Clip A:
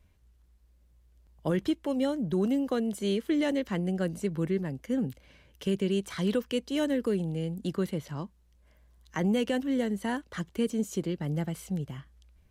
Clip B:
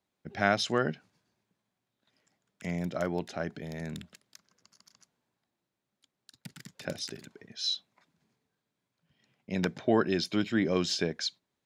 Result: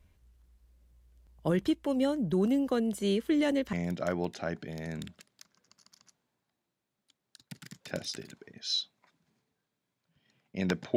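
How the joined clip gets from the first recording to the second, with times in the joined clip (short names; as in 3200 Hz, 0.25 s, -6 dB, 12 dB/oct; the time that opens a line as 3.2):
clip A
3.73 switch to clip B from 2.67 s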